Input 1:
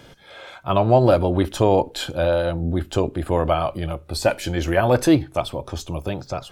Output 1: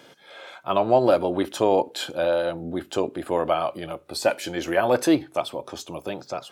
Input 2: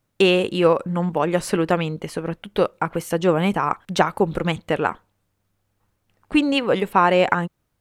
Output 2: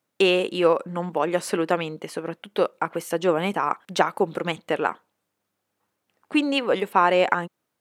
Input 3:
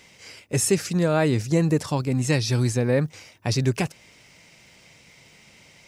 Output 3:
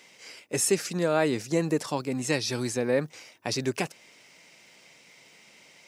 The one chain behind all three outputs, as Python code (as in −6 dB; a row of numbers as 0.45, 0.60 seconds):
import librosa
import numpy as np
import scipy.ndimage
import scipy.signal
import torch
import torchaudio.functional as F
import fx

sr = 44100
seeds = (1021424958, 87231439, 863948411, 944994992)

y = scipy.signal.sosfilt(scipy.signal.butter(2, 250.0, 'highpass', fs=sr, output='sos'), x)
y = y * 10.0 ** (-2.0 / 20.0)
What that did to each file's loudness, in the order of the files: −3.0, −3.0, −4.5 LU